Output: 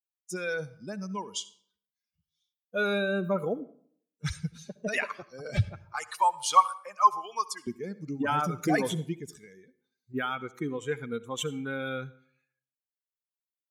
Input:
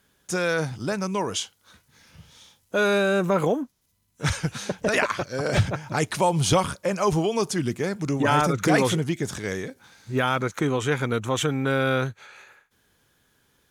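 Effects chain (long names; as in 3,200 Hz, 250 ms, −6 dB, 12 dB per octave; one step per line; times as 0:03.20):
spectral dynamics exaggerated over time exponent 2
0:05.77–0:07.67: high-pass with resonance 1,100 Hz, resonance Q 4.9
0:09.42–0:10.14: downward compressor 6 to 1, threshold −47 dBFS, peak gain reduction 9.5 dB
convolution reverb RT60 0.60 s, pre-delay 60 ms, DRR 17.5 dB
level −2.5 dB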